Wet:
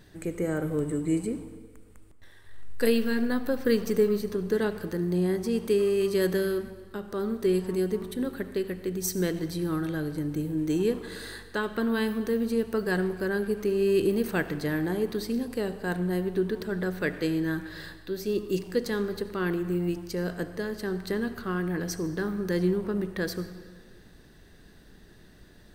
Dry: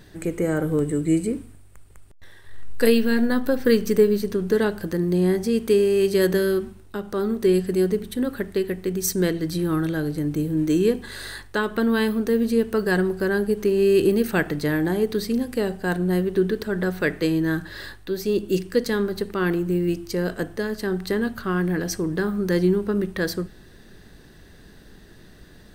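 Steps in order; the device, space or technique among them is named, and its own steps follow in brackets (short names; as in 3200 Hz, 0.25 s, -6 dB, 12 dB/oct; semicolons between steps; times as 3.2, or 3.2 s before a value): saturated reverb return (on a send at -10 dB: reverb RT60 1.6 s, pre-delay 67 ms + soft clip -20.5 dBFS, distortion -11 dB); on the sum: gain -6 dB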